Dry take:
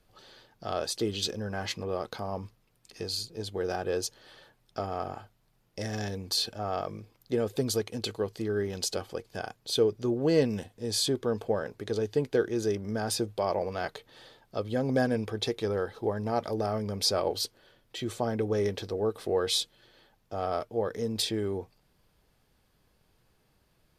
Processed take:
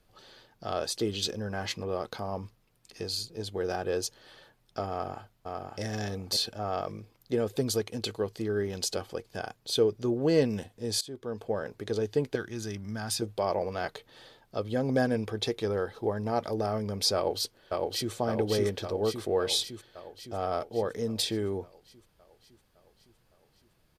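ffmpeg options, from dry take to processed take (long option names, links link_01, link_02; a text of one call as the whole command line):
ffmpeg -i in.wav -filter_complex "[0:a]asplit=2[link_01][link_02];[link_02]afade=type=in:start_time=4.9:duration=0.01,afade=type=out:start_time=5.81:duration=0.01,aecho=0:1:550|1100|1650:0.668344|0.100252|0.0150377[link_03];[link_01][link_03]amix=inputs=2:normalize=0,asettb=1/sr,asplit=3[link_04][link_05][link_06];[link_04]atrim=end=12.354[link_07];[link_05]atrim=start=12.35:end=13.22,asetpts=PTS-STARTPTS,afade=type=in:duration=0.004:curve=qsin,afade=type=out:start_time=0.866:duration=0.004:curve=qsin,equalizer=frequency=460:width=1.2:gain=-14[link_08];[link_06]atrim=start=13.216[link_09];[link_07][link_08]acrossfade=duration=0.004:curve1=hsin:curve2=qsin[link_10];[link_10][link_09]acrossfade=duration=0.004:curve1=qsin:curve2=hsin,asplit=2[link_11][link_12];[link_12]afade=type=in:start_time=17.15:duration=0.01,afade=type=out:start_time=18.13:duration=0.01,aecho=0:1:560|1120|1680|2240|2800|3360|3920|4480|5040|5600|6160:0.794328|0.516313|0.335604|0.218142|0.141793|0.0921652|0.0599074|0.0389398|0.0253109|0.0164521|0.0106938[link_13];[link_11][link_13]amix=inputs=2:normalize=0,asplit=2[link_14][link_15];[link_14]atrim=end=11.01,asetpts=PTS-STARTPTS,afade=type=out:start_time=11.006:duration=0.004:curve=hsin:silence=0.1[link_16];[link_15]atrim=start=11.01,asetpts=PTS-STARTPTS,afade=type=in:duration=0.72:silence=0.1[link_17];[link_16][link_17]concat=n=2:v=0:a=1" out.wav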